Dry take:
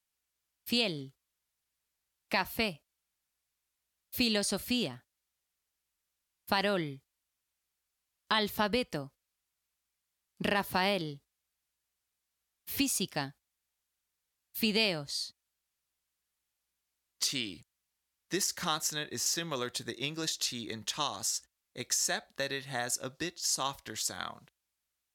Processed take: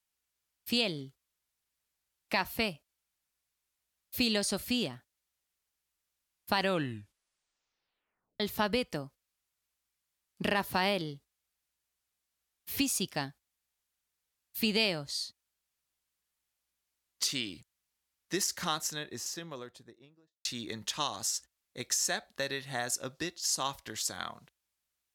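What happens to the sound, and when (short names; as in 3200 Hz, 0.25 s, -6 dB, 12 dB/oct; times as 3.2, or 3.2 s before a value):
6.58 tape stop 1.82 s
18.55–20.45 studio fade out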